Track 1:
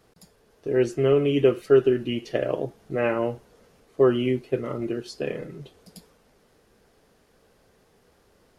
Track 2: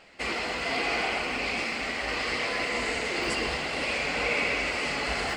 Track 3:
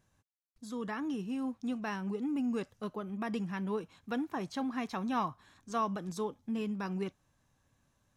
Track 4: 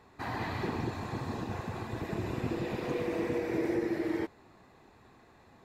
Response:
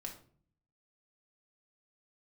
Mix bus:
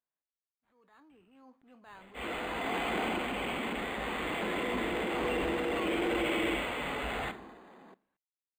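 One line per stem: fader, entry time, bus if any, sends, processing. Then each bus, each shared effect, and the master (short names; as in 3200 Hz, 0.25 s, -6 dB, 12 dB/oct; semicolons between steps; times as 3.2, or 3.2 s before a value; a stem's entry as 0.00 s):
off
-6.0 dB, 1.95 s, send -6.5 dB, dry
0.78 s -21.5 dB -> 1.46 s -10.5 dB, 0.00 s, send -12.5 dB, HPF 540 Hz 12 dB/oct
-1.0 dB, 2.30 s, send -19 dB, elliptic high-pass 180 Hz; upward compressor, threshold -44 dBFS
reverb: on, RT60 0.50 s, pre-delay 4 ms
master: transient shaper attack -8 dB, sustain +5 dB; decimation joined by straight lines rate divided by 8×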